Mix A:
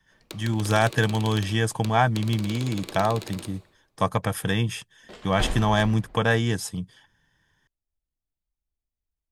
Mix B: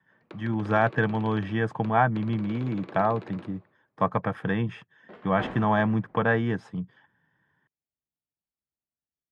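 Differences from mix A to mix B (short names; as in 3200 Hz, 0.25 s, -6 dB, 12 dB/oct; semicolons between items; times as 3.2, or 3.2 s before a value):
background: send -7.0 dB; master: add Chebyshev band-pass 150–1600 Hz, order 2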